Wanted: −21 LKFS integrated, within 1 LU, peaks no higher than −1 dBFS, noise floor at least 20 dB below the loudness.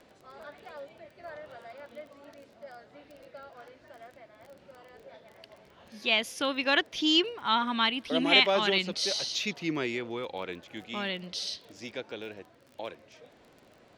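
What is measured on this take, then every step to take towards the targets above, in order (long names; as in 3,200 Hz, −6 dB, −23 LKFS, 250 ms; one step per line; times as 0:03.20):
crackle rate 22 per second; integrated loudness −28.0 LKFS; sample peak −5.5 dBFS; target loudness −21.0 LKFS
→ click removal
level +7 dB
brickwall limiter −1 dBFS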